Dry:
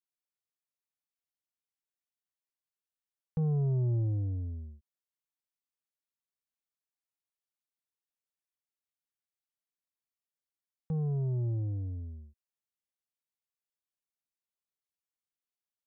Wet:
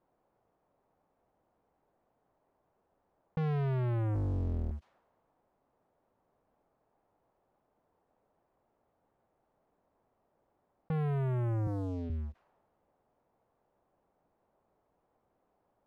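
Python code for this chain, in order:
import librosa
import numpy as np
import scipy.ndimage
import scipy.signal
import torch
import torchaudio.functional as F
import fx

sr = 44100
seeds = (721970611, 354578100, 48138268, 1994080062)

y = fx.octave_divider(x, sr, octaves=1, level_db=-3.0, at=(4.14, 4.71))
y = fx.peak_eq(y, sr, hz=780.0, db=8.5, octaves=1.6)
y = fx.leveller(y, sr, passes=3)
y = fx.highpass(y, sr, hz=120.0, slope=24, at=(11.67, 12.1))
y = fx.env_lowpass(y, sr, base_hz=640.0, full_db=-29.5)
y = fx.env_flatten(y, sr, amount_pct=50)
y = F.gain(torch.from_numpy(y), -5.5).numpy()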